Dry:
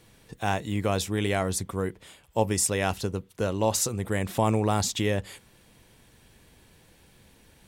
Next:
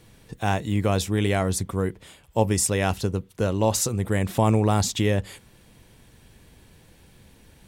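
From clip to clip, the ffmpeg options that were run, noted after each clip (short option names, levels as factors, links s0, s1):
-af "lowshelf=f=270:g=5,volume=1.19"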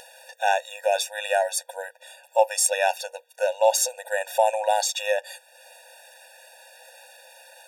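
-af "acompressor=mode=upward:threshold=0.0158:ratio=2.5,afftfilt=real='re*eq(mod(floor(b*sr/1024/480),2),1)':imag='im*eq(mod(floor(b*sr/1024/480),2),1)':win_size=1024:overlap=0.75,volume=1.88"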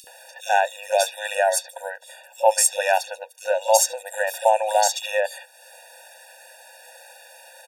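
-filter_complex "[0:a]acrossover=split=380|3300[s0][s1][s2];[s0]adelay=40[s3];[s1]adelay=70[s4];[s3][s4][s2]amix=inputs=3:normalize=0,volume=1.5"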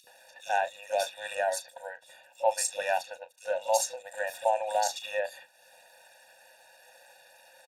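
-filter_complex "[0:a]asplit=2[s0][s1];[s1]adelay=34,volume=0.237[s2];[s0][s2]amix=inputs=2:normalize=0,volume=0.355" -ar 32000 -c:a libspeex -b:a 36k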